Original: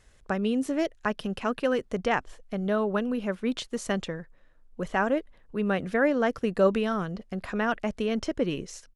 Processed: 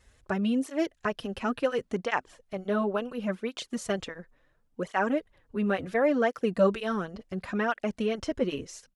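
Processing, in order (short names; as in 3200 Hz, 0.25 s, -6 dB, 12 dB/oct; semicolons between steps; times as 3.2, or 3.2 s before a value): tape flanging out of phase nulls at 0.71 Hz, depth 7 ms; gain +1.5 dB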